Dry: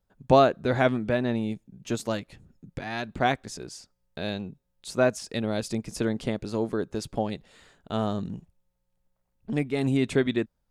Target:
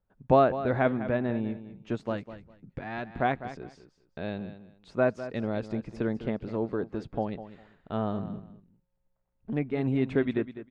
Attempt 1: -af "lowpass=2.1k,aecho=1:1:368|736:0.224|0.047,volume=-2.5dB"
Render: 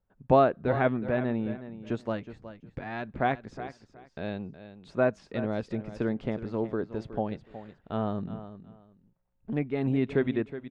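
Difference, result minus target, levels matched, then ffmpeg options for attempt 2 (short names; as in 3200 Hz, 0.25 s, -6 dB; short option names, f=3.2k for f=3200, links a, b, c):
echo 0.166 s late
-af "lowpass=2.1k,aecho=1:1:202|404:0.224|0.047,volume=-2.5dB"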